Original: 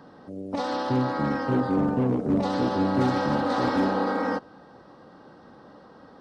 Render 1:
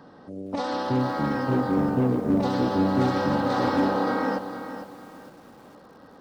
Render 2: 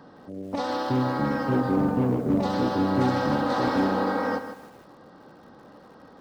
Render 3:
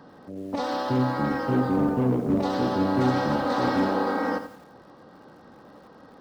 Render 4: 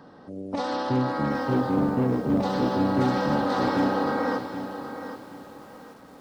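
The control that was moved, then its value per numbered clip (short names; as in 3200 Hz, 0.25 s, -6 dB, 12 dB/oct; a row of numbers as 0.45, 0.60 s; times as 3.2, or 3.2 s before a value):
lo-fi delay, time: 456, 157, 86, 773 ms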